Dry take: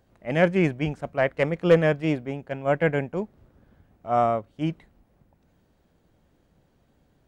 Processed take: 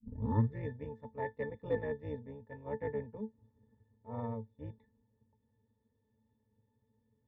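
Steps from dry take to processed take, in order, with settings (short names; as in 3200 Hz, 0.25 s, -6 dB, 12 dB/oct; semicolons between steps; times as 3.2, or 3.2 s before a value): tape start at the beginning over 0.64 s; AM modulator 220 Hz, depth 60%; octave resonator A, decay 0.12 s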